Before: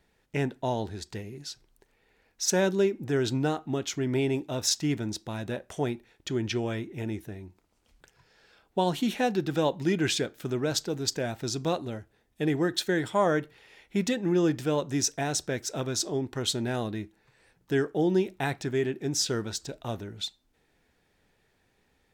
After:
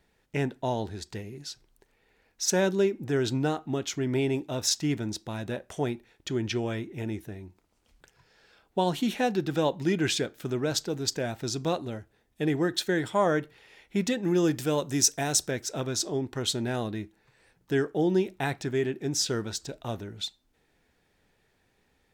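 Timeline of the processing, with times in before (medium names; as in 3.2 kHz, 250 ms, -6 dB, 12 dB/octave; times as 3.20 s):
14.23–15.51 s: treble shelf 6.3 kHz +11 dB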